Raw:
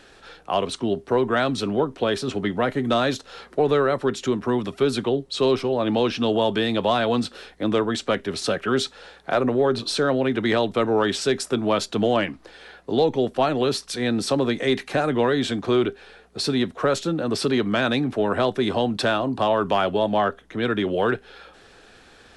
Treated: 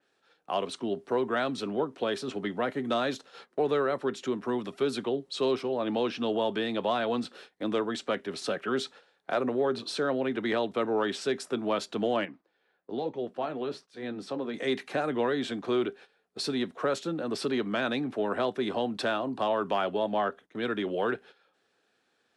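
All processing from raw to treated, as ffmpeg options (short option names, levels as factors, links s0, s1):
-filter_complex "[0:a]asettb=1/sr,asplit=3[s0][s1][s2];[s0]atrim=end=12.254[s3];[s1]atrim=start=12.25:end=14.54,asetpts=PTS-STARTPTS,afade=t=in:d=0.004:c=qsin,afade=t=out:st=2.286:d=0.004:c=qsin,lowpass=f=2200:p=1,flanger=delay=5.1:depth=8.1:regen=-64:speed=1.1:shape=triangular[s4];[s2]atrim=start=14.536[s5];[s3][s4]acrossfade=d=0.004:c1=hsin:c2=qsin[s6];[s6][s5]acrossfade=d=0.004:c1=qsin:c2=hsin,agate=range=0.178:threshold=0.01:ratio=16:detection=peak,highpass=180,adynamicequalizer=threshold=0.0112:dfrequency=3600:dqfactor=0.7:tfrequency=3600:tqfactor=0.7:attack=5:release=100:ratio=0.375:range=2.5:mode=cutabove:tftype=highshelf,volume=0.447"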